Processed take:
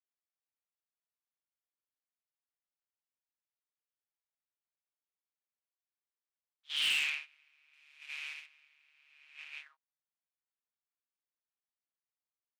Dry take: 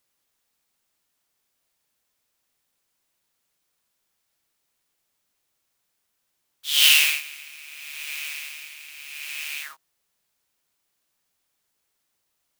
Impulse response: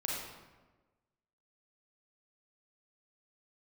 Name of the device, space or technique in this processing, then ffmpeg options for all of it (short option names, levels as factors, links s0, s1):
walkie-talkie: -filter_complex "[0:a]asettb=1/sr,asplit=3[s0][s1][s2];[s0]atrim=end=7.734[s3];[s1]atrim=start=7.73:end=8.46,asetpts=PTS-STARTPTS,afade=t=in:d=0.004:c=qsin,afade=t=out:st=0.726:d=0.004:c=qsin,equalizer=f=11000:t=o:w=2.1:g=8[s4];[s2]atrim=start=8.456[s5];[s3][s4]acrossfade=d=0.004:c1=hsin:c2=qsin[s6];[s6][s5]acrossfade=d=0.004:c1=qsin:c2=hsin,highpass=580,lowpass=2600,asoftclip=type=hard:threshold=0.119,agate=range=0.178:threshold=0.0178:ratio=16:detection=peak,volume=0.422"